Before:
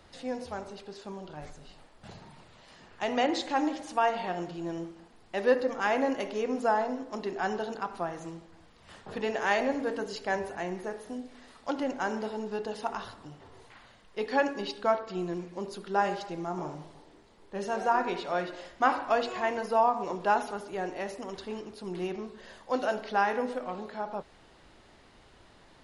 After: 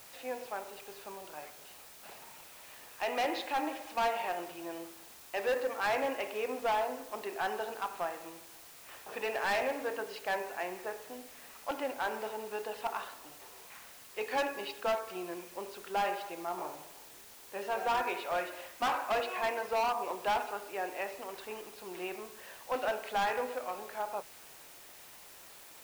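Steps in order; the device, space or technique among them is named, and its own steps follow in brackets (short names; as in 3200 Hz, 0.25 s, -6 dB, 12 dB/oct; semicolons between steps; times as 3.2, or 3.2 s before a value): drive-through speaker (BPF 510–3000 Hz; bell 2500 Hz +8.5 dB 0.21 oct; hard clip -26.5 dBFS, distortion -8 dB; white noise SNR 17 dB)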